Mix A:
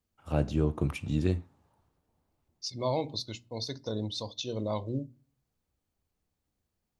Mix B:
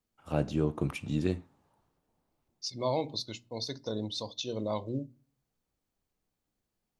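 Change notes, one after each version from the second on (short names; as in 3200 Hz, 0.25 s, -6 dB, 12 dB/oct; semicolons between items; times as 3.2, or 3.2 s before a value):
master: add bell 76 Hz -9 dB 1 oct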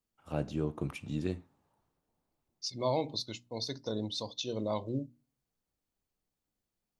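first voice -4.5 dB; second voice: send -8.5 dB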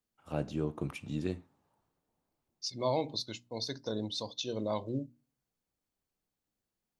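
second voice: remove notch 1600 Hz, Q 7.4; master: add low shelf 67 Hz -5.5 dB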